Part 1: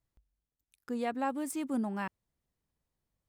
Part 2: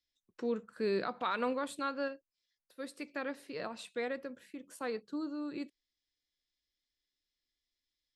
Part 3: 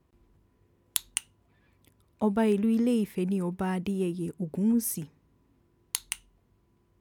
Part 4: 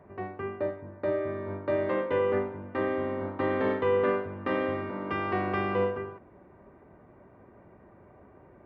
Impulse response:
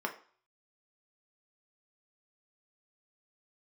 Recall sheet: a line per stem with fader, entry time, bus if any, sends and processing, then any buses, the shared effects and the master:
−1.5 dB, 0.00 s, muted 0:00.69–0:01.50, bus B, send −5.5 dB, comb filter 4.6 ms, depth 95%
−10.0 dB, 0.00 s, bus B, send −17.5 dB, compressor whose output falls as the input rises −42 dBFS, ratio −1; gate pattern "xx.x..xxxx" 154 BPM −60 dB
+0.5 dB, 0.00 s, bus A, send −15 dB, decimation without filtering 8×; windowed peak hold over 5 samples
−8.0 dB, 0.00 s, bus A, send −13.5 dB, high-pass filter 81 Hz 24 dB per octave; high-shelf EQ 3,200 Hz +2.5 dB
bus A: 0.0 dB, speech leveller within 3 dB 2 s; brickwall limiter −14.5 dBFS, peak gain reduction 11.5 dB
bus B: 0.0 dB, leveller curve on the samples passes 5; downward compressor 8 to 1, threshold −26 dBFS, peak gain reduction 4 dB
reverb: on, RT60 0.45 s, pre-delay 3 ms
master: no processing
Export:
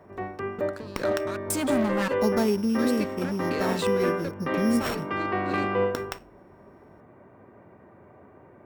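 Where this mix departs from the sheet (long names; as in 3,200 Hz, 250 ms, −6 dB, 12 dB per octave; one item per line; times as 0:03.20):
stem 4 −8.0 dB → −0.5 dB
reverb return −8.5 dB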